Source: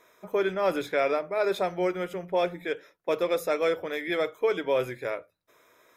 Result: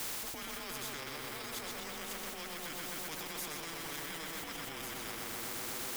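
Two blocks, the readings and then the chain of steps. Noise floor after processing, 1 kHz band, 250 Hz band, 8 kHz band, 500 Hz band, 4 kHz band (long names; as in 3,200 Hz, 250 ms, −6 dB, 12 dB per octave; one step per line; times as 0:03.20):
−44 dBFS, −12.0 dB, −13.0 dB, +10.5 dB, −22.5 dB, −1.0 dB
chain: mains-hum notches 50/100/150/200/250/300 Hz
in parallel at −5 dB: bit-depth reduction 8 bits, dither triangular
on the sum: tape delay 125 ms, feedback 87%, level −3.5 dB, low-pass 3,500 Hz
transient designer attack −5 dB, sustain −1 dB
brickwall limiter −20 dBFS, peak gain reduction 10.5 dB
frequency shifter −160 Hz
reversed playback
downward compressor, threshold −39 dBFS, peak gain reduction 14.5 dB
reversed playback
every bin compressed towards the loudest bin 4 to 1
level +3.5 dB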